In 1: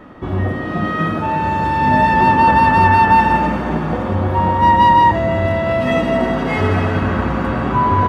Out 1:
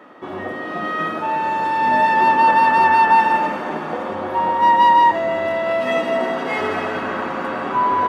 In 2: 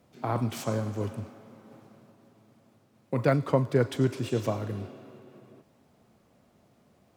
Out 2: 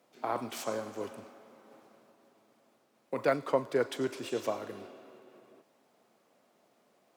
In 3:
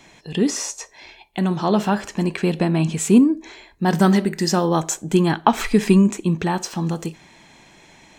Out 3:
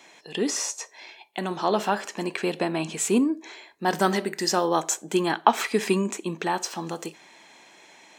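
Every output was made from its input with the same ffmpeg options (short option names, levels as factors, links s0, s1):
-af "highpass=370,volume=0.841"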